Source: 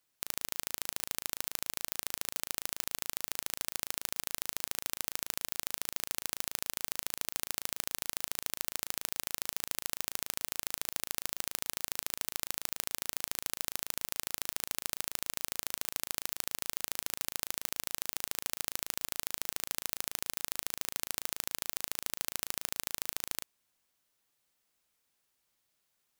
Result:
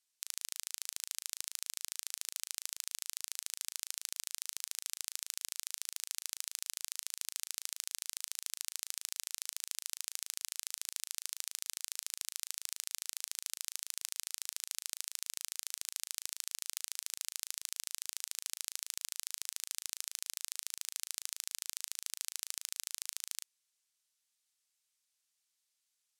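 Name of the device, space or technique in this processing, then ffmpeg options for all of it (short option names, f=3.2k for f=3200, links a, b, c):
piezo pickup straight into a mixer: -af "lowpass=7.7k,aderivative,volume=3dB"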